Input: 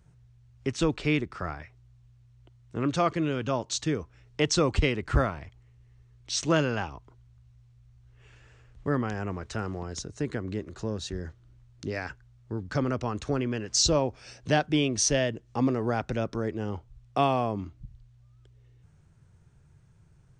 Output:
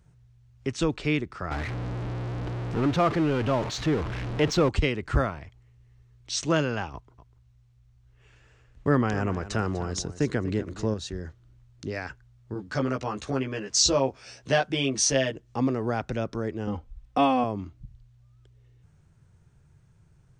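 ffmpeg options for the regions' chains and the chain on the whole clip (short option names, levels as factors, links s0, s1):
-filter_complex "[0:a]asettb=1/sr,asplit=3[s0][s1][s2];[s0]atrim=end=1.514[s3];[s1]atrim=start=1.51:end=4.69,asetpts=PTS-STARTPTS,afade=t=in:d=0.004:c=qsin,afade=t=out:st=3.176:d=0.004:c=qsin,aeval=exprs='val(0)+0.5*0.0501*sgn(val(0))':c=same,adynamicsmooth=sensitivity=1.5:basefreq=4600,aemphasis=mode=reproduction:type=cd[s4];[s2]atrim=start=4.686[s5];[s3][s4]acrossfade=d=0.004:c1=hsin:c2=qsin[s6];[s6][s5]acrossfade=d=0.004:c1=qsin:c2=hsin,asettb=1/sr,asplit=3[s7][s8][s9];[s7]atrim=end=6.934[s10];[s8]atrim=start=6.93:end=10.94,asetpts=PTS-STARTPTS,afade=t=in:d=0.004:c=qsin,afade=t=out:st=4.006:d=0.004:c=qsin,agate=range=0.447:threshold=0.00398:ratio=16:release=100:detection=peak,acontrast=28,aecho=1:1:246:0.188,atrim=end_sample=176841[s11];[s9]atrim=start=10.936[s12];[s10][s11]acrossfade=d=0.004:c1=hsin:c2=qsin[s13];[s13][s12]acrossfade=d=0.004:c1=qsin:c2=hsin,asettb=1/sr,asplit=3[s14][s15][s16];[s14]atrim=end=12.544[s17];[s15]atrim=start=12.54:end=15.36,asetpts=PTS-STARTPTS,afade=t=in:d=0.004:c=qsin,afade=t=out:st=2.816:d=0.004:c=qsin,lowshelf=f=190:g=-8,asplit=2[s18][s19];[s19]adelay=15,volume=0.794[s20];[s18][s20]amix=inputs=2:normalize=0,atrim=end_sample=124362[s21];[s16]atrim=start=15.356[s22];[s17][s21]acrossfade=d=0.004:c1=hsin:c2=qsin[s23];[s23][s22]acrossfade=d=0.004:c1=qsin:c2=hsin,asettb=1/sr,asplit=3[s24][s25][s26];[s24]atrim=end=16.674[s27];[s25]atrim=start=16.67:end=17.44,asetpts=PTS-STARTPTS,afade=t=in:d=0.004:c=qsin,afade=t=out:st=0.766:d=0.004:c=qsin,bass=f=250:g=4,treble=f=4000:g=-4,aecho=1:1:3.9:0.89,atrim=end_sample=33957[s28];[s26]atrim=start=17.436[s29];[s27][s28]acrossfade=d=0.004:c1=hsin:c2=qsin[s30];[s30][s29]acrossfade=d=0.004:c1=qsin:c2=hsin"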